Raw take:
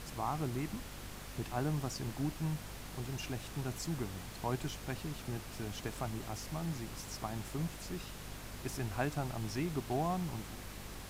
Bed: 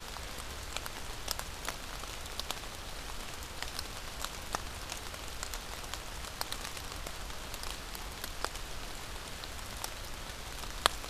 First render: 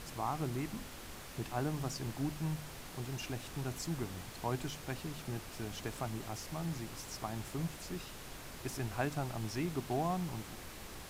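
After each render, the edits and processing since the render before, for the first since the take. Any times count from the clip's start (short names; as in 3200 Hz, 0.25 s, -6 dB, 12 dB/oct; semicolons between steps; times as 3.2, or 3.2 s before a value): de-hum 50 Hz, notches 5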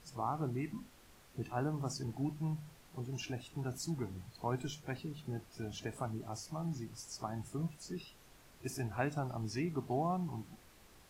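noise print and reduce 13 dB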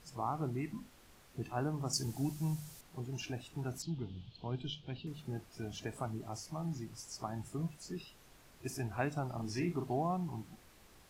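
1.93–2.81 tone controls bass +2 dB, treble +14 dB; 3.82–5.07 EQ curve 160 Hz 0 dB, 2000 Hz -13 dB, 3200 Hz +9 dB, 9100 Hz -26 dB; 9.34–9.91 doubler 40 ms -5.5 dB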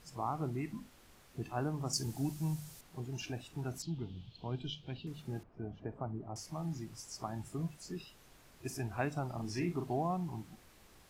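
5.43–6.36 LPF 1000 Hz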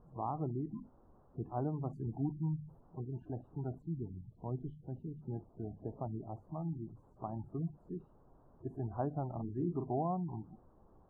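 spectral gate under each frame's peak -25 dB strong; inverse Chebyshev low-pass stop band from 2100 Hz, stop band 40 dB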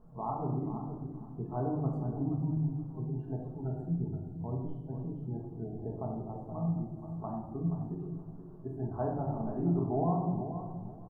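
feedback echo 0.475 s, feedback 21%, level -10 dB; shoebox room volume 530 m³, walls mixed, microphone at 1.5 m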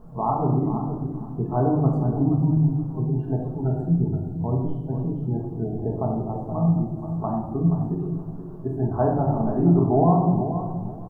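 gain +12 dB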